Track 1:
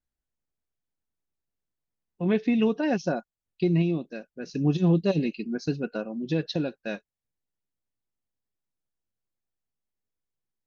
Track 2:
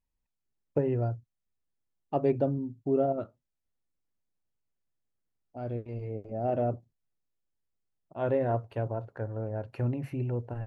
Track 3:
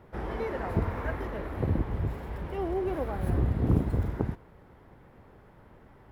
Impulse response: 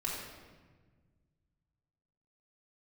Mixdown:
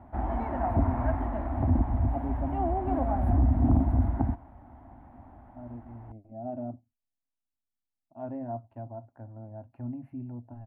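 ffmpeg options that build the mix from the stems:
-filter_complex "[1:a]lowshelf=f=340:g=7.5,bandreject=f=730:w=12,volume=-15dB[a];[2:a]equalizer=f=66:t=o:w=1.5:g=8.5,asoftclip=type=tanh:threshold=-14.5dB,volume=-1dB[b];[a][b]amix=inputs=2:normalize=0,firequalizer=gain_entry='entry(110,0);entry(170,-7);entry(250,11);entry(450,-15);entry(680,12);entry(1200,-1);entry(5100,-22);entry(8500,-13)':delay=0.05:min_phase=1"

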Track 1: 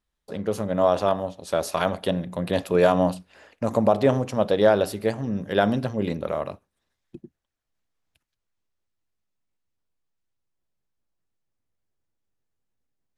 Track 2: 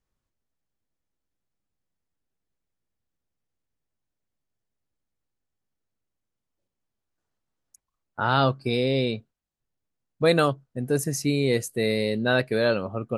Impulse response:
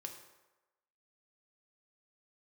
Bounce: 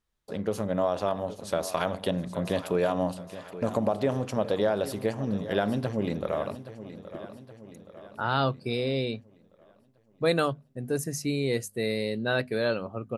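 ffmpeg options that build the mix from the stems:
-filter_complex "[0:a]acompressor=threshold=-22dB:ratio=3,volume=-1.5dB,asplit=2[a][b];[b]volume=-14dB[c];[1:a]bandreject=f=50:t=h:w=6,bandreject=f=100:t=h:w=6,bandreject=f=150:t=h:w=6,bandreject=f=200:t=h:w=6,bandreject=f=250:t=h:w=6,volume=-4.5dB[d];[c]aecho=0:1:822|1644|2466|3288|4110|4932|5754|6576:1|0.52|0.27|0.141|0.0731|0.038|0.0198|0.0103[e];[a][d][e]amix=inputs=3:normalize=0"

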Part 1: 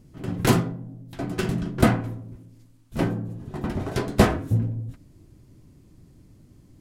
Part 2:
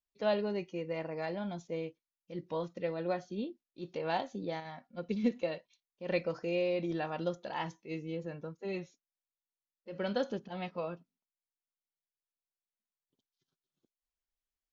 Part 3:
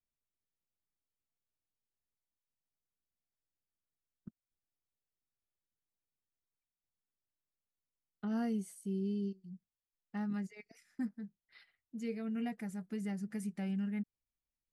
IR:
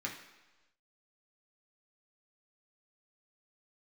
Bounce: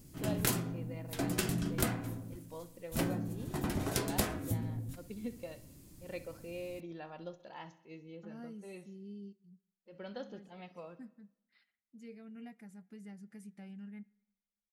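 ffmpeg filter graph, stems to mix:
-filter_complex "[0:a]aemphasis=mode=production:type=75kf,acompressor=threshold=-26dB:ratio=5,volume=-4dB,asplit=2[a][b];[b]volume=-15.5dB[c];[1:a]volume=-11dB,asplit=3[d][e][f];[e]volume=-17dB[g];[2:a]volume=-11dB,asplit=2[h][i];[i]volume=-19dB[j];[f]apad=whole_len=649302[k];[h][k]sidechaincompress=threshold=-46dB:ratio=8:attack=16:release=720[l];[3:a]atrim=start_sample=2205[m];[c][j]amix=inputs=2:normalize=0[n];[n][m]afir=irnorm=-1:irlink=0[o];[g]aecho=0:1:65|130|195|260|325|390|455|520|585:1|0.58|0.336|0.195|0.113|0.0656|0.0381|0.0221|0.0128[p];[a][d][l][o][p]amix=inputs=5:normalize=0"

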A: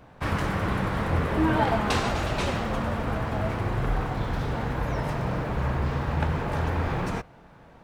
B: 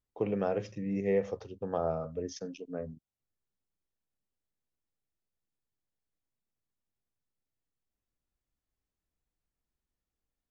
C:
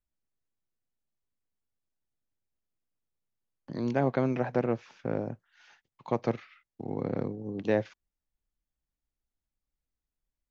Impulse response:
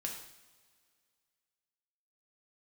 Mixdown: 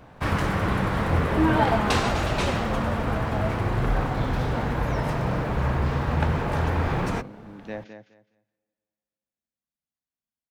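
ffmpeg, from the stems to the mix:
-filter_complex "[0:a]volume=2.5dB[a];[1:a]aeval=exprs='val(0)*sgn(sin(2*PI*220*n/s))':c=same,volume=-19dB[b];[2:a]highpass=120,equalizer=f=410:w=1.8:g=-8,volume=-6.5dB,asplit=3[c][d][e];[d]volume=-11.5dB[f];[e]volume=-8dB[g];[3:a]atrim=start_sample=2205[h];[f][h]afir=irnorm=-1:irlink=0[i];[g]aecho=0:1:209|418|627:1|0.2|0.04[j];[a][b][c][i][j]amix=inputs=5:normalize=0"

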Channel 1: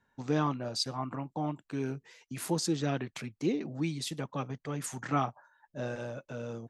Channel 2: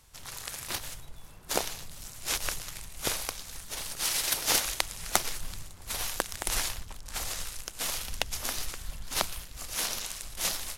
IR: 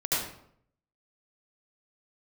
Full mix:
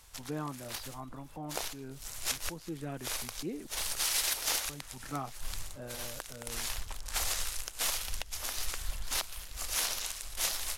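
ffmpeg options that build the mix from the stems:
-filter_complex "[0:a]lowpass=2.6k,volume=-8.5dB,asplit=3[a][b][c];[a]atrim=end=3.67,asetpts=PTS-STARTPTS,afade=t=out:st=3.666:d=0.004:c=hsin[d];[b]atrim=start=3.67:end=4.69,asetpts=PTS-STARTPTS,volume=0[e];[c]atrim=start=4.69,asetpts=PTS-STARTPTS,afade=t=in:d=0.004:c=hsin[f];[d][e][f]concat=n=3:v=0:a=1,asplit=2[g][h];[1:a]equalizer=f=180:w=0.65:g=-9,alimiter=limit=-12dB:level=0:latency=1:release=458,volume=3dB[i];[h]apad=whole_len=475300[j];[i][j]sidechaincompress=threshold=-55dB:ratio=6:attack=16:release=155[k];[g][k]amix=inputs=2:normalize=0,alimiter=limit=-18.5dB:level=0:latency=1:release=290"

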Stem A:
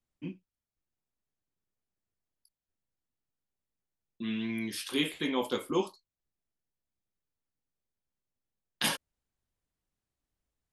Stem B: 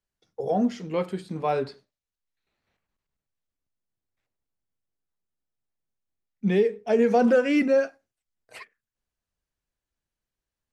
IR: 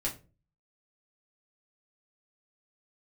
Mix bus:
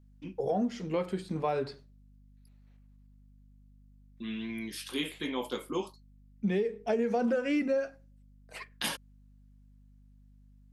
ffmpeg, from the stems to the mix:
-filter_complex "[0:a]highpass=120,volume=-3dB[a];[1:a]aeval=exprs='val(0)+0.00158*(sin(2*PI*50*n/s)+sin(2*PI*2*50*n/s)/2+sin(2*PI*3*50*n/s)/3+sin(2*PI*4*50*n/s)/4+sin(2*PI*5*50*n/s)/5)':c=same,volume=-1.5dB,asplit=2[b][c];[c]volume=-21.5dB[d];[2:a]atrim=start_sample=2205[e];[d][e]afir=irnorm=-1:irlink=0[f];[a][b][f]amix=inputs=3:normalize=0,acompressor=threshold=-26dB:ratio=6"

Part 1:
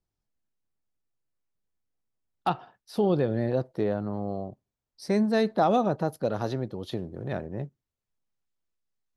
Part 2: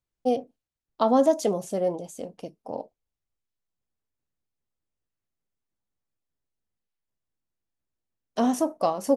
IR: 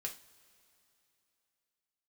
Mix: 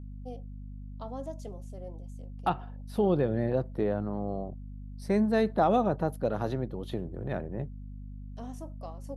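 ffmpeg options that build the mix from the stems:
-filter_complex "[0:a]aeval=exprs='val(0)+0.0112*(sin(2*PI*50*n/s)+sin(2*PI*2*50*n/s)/2+sin(2*PI*3*50*n/s)/3+sin(2*PI*4*50*n/s)/4+sin(2*PI*5*50*n/s)/5)':c=same,equalizer=f=5.1k:w=1.6:g=-9,volume=-1.5dB,asplit=2[a][b];[1:a]volume=-11.5dB[c];[b]apad=whole_len=403971[d];[c][d]sidechaincompress=threshold=-47dB:ratio=6:attack=6.6:release=1060[e];[a][e]amix=inputs=2:normalize=0"

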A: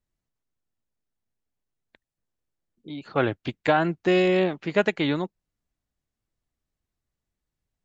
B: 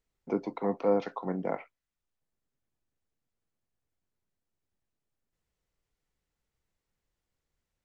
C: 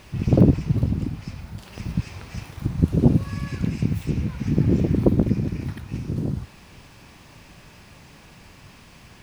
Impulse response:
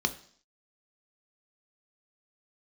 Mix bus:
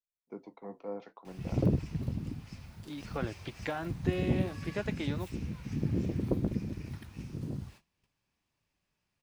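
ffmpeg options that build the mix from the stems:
-filter_complex "[0:a]acompressor=threshold=-30dB:ratio=2.5,volume=-2dB[a];[1:a]volume=-10dB[b];[2:a]highshelf=f=2.3k:g=4.5,adelay=1250,volume=-8dB[c];[a][b][c]amix=inputs=3:normalize=0,agate=range=-24dB:threshold=-48dB:ratio=16:detection=peak,flanger=delay=1.5:depth=8.9:regen=-70:speed=0.58:shape=triangular"

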